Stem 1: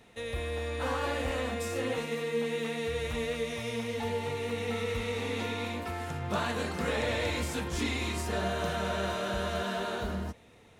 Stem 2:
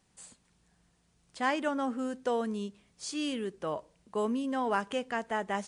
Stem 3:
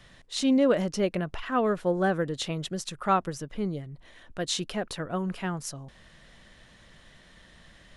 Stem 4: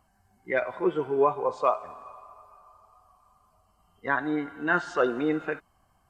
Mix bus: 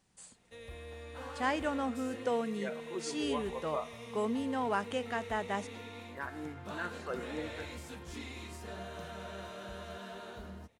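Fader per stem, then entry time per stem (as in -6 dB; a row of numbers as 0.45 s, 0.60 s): -12.5 dB, -2.5 dB, mute, -15.0 dB; 0.35 s, 0.00 s, mute, 2.10 s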